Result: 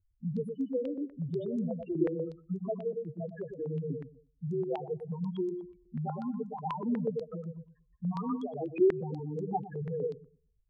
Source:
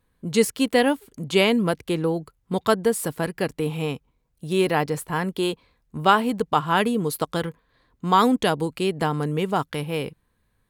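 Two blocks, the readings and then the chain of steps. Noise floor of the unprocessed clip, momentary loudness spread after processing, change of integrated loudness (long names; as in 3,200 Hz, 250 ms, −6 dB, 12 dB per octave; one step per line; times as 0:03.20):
−70 dBFS, 9 LU, −11.5 dB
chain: downward compressor, threshold −28 dBFS, peak gain reduction 16 dB
soft clipping −18.5 dBFS, distortion −25 dB
spectral peaks only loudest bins 2
on a send: feedback echo with a low-pass in the loop 110 ms, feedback 23%, low-pass 1,100 Hz, level −5 dB
on the sum: low-pass on a step sequencer 8.2 Hz 360–6,600 Hz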